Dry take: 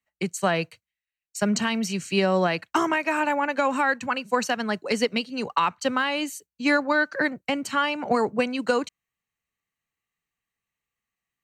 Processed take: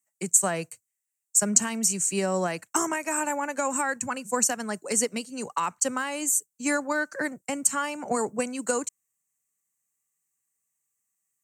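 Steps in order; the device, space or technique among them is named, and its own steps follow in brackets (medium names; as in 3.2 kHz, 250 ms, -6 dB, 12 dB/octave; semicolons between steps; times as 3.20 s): 3.96–4.51 s: peaking EQ 95 Hz +10 dB 1.7 oct; budget condenser microphone (high-pass 110 Hz; resonant high shelf 5.4 kHz +14 dB, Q 3); trim -4.5 dB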